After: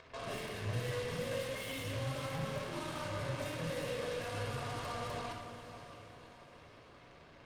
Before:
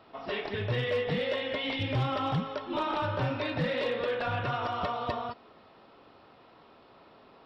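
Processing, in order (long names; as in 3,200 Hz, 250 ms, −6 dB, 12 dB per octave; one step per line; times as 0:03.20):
Chebyshev low-pass filter 5,000 Hz, order 5
0:01.64–0:04.43: low-shelf EQ 110 Hz −9 dB
downward compressor 8 to 1, threshold −34 dBFS, peak gain reduction 8.5 dB
brickwall limiter −38 dBFS, peak gain reduction 11 dB
upward compression, threshold −56 dBFS
harmonic generator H 2 −18 dB, 5 −11 dB, 7 −6 dB, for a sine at −37.5 dBFS
feedback delay with all-pass diffusion 589 ms, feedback 44%, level −10.5 dB
rectangular room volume 4,000 cubic metres, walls furnished, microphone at 5.4 metres
level −1.5 dB
Opus 48 kbit/s 48,000 Hz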